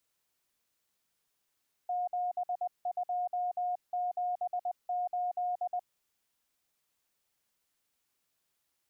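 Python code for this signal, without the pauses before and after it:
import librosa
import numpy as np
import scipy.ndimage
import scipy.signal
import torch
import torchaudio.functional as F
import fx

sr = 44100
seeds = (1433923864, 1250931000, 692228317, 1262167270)

y = fx.morse(sr, text='7278', wpm=20, hz=718.0, level_db=-29.5)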